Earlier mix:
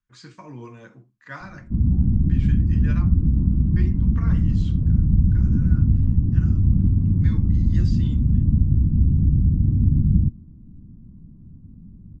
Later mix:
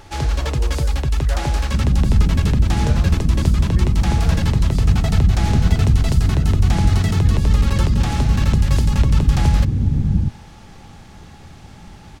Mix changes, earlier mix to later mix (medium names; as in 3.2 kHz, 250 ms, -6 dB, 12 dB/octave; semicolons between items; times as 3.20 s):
first sound: unmuted; master: add high-order bell 570 Hz +13 dB 1.3 oct